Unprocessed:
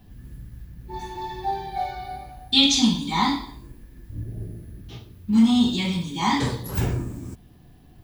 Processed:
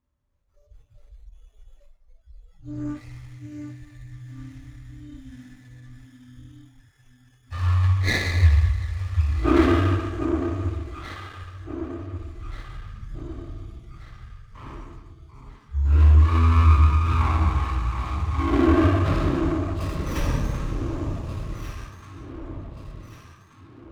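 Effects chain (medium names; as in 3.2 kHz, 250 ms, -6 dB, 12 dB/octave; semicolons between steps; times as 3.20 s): time-frequency box 1.01–3.17 s, 380–5000 Hz -24 dB; wide varispeed 0.336×; comb of notches 730 Hz; echo whose repeats swap between lows and highs 741 ms, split 1.1 kHz, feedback 66%, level -7 dB; spectral noise reduction 23 dB; time-frequency box 0.43–1.33 s, 690–3500 Hz -15 dB; sliding maximum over 9 samples; trim +4 dB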